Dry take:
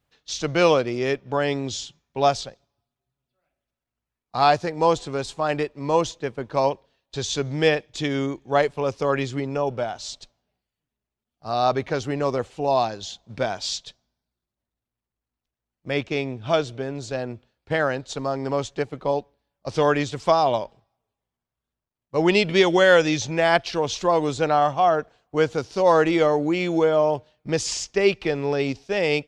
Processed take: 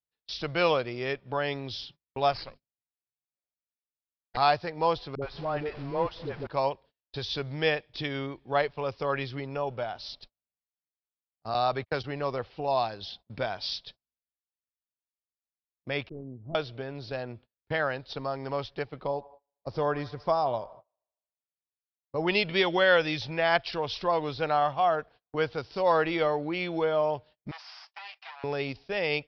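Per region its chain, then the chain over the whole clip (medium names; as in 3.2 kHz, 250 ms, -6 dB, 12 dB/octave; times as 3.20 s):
2.32–4.37 s: comb filter that takes the minimum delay 0.42 ms + hum notches 50/100/150/200/250 Hz
5.15–6.47 s: jump at every zero crossing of -31 dBFS + de-esser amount 90% + phase dispersion highs, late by 73 ms, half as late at 420 Hz
11.54–12.04 s: gate -31 dBFS, range -48 dB + three bands compressed up and down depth 70%
16.09–16.55 s: CVSD coder 16 kbps + four-pole ladder low-pass 520 Hz, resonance 20% + dynamic bell 410 Hz, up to -4 dB, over -43 dBFS, Q 1.4
19.07–22.27 s: peaking EQ 2.8 kHz -12 dB 1.6 oct + feedback echo behind a band-pass 77 ms, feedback 60%, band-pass 1.2 kHz, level -17.5 dB
27.51–28.44 s: comb filter that takes the minimum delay 7.9 ms + steep high-pass 710 Hz 48 dB/octave + compression 4:1, threshold -37 dBFS
whole clip: gate -44 dBFS, range -25 dB; steep low-pass 5.3 kHz 96 dB/octave; dynamic bell 270 Hz, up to -7 dB, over -34 dBFS, Q 0.72; trim -4 dB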